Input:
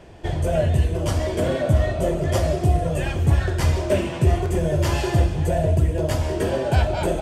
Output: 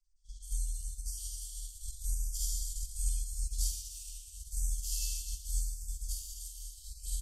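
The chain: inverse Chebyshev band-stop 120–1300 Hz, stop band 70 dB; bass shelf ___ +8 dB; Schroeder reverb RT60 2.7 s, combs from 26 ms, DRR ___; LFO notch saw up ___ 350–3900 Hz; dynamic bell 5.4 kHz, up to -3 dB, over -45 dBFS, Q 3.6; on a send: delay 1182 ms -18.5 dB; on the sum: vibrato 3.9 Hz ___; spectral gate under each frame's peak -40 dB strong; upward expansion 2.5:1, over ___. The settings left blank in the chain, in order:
66 Hz, -8 dB, 0.85 Hz, 6.3 cents, -41 dBFS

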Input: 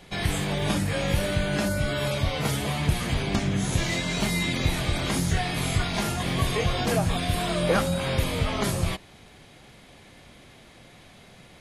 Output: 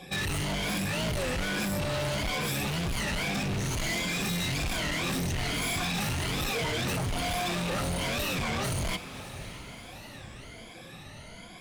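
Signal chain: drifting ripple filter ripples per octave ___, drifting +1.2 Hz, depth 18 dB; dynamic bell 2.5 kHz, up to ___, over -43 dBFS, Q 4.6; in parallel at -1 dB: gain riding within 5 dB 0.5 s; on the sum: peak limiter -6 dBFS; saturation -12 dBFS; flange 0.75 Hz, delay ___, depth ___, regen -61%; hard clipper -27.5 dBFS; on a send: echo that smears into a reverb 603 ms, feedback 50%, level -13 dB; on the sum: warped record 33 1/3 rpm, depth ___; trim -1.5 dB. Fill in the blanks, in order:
1.8, +5 dB, 0.3 ms, 1.1 ms, 250 cents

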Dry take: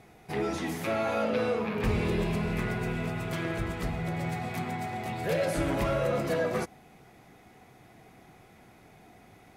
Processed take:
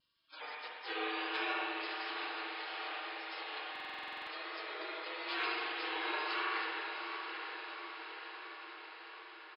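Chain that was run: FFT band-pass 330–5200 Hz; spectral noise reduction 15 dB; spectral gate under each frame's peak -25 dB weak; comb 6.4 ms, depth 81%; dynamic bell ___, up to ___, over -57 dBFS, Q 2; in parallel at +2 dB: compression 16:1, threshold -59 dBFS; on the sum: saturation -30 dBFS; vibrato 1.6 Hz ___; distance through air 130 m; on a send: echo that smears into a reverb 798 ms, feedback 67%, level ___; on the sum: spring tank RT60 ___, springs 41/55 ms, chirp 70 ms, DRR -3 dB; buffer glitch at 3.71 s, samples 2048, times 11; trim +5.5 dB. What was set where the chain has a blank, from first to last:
3.4 kHz, -3 dB, 41 cents, -7 dB, 2.3 s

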